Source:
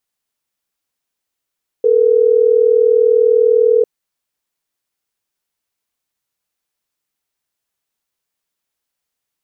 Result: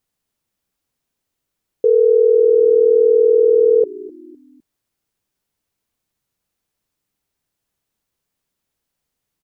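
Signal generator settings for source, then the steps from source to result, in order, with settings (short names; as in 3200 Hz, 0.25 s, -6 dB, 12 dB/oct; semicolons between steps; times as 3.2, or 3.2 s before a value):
call progress tone ringback tone, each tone -11 dBFS
low shelf 420 Hz +11.5 dB; limiter -6.5 dBFS; frequency-shifting echo 0.254 s, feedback 39%, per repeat -61 Hz, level -20 dB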